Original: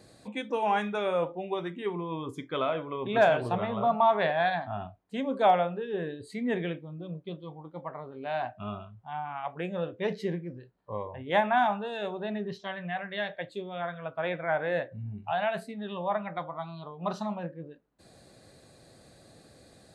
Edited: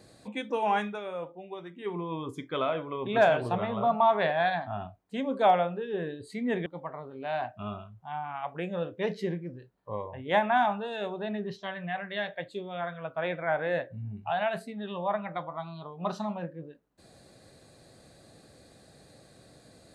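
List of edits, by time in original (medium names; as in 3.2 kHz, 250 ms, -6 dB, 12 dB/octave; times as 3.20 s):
0.80–1.96 s: dip -8.5 dB, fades 0.21 s
6.66–7.67 s: delete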